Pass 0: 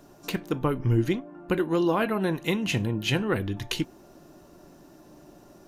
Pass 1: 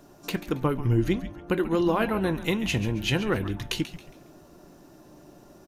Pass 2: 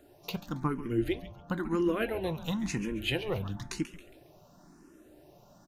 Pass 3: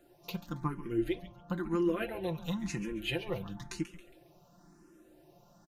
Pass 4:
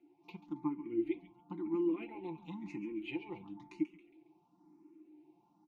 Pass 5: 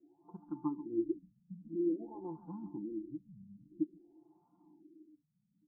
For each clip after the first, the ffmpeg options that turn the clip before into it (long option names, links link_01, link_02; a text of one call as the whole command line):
ffmpeg -i in.wav -filter_complex "[0:a]asplit=5[link_01][link_02][link_03][link_04][link_05];[link_02]adelay=137,afreqshift=-150,volume=-12.5dB[link_06];[link_03]adelay=274,afreqshift=-300,volume=-21.6dB[link_07];[link_04]adelay=411,afreqshift=-450,volume=-30.7dB[link_08];[link_05]adelay=548,afreqshift=-600,volume=-39.9dB[link_09];[link_01][link_06][link_07][link_08][link_09]amix=inputs=5:normalize=0" out.wav
ffmpeg -i in.wav -filter_complex "[0:a]asplit=2[link_01][link_02];[link_02]afreqshift=0.98[link_03];[link_01][link_03]amix=inputs=2:normalize=1,volume=-3dB" out.wav
ffmpeg -i in.wav -af "aecho=1:1:5.8:0.65,volume=-5.5dB" out.wav
ffmpeg -i in.wav -filter_complex "[0:a]asplit=3[link_01][link_02][link_03];[link_01]bandpass=frequency=300:width_type=q:width=8,volume=0dB[link_04];[link_02]bandpass=frequency=870:width_type=q:width=8,volume=-6dB[link_05];[link_03]bandpass=frequency=2240:width_type=q:width=8,volume=-9dB[link_06];[link_04][link_05][link_06]amix=inputs=3:normalize=0,volume=5.5dB" out.wav
ffmpeg -i in.wav -af "afftfilt=real='re*lt(b*sr/1024,230*pow(1700/230,0.5+0.5*sin(2*PI*0.51*pts/sr)))':imag='im*lt(b*sr/1024,230*pow(1700/230,0.5+0.5*sin(2*PI*0.51*pts/sr)))':win_size=1024:overlap=0.75" out.wav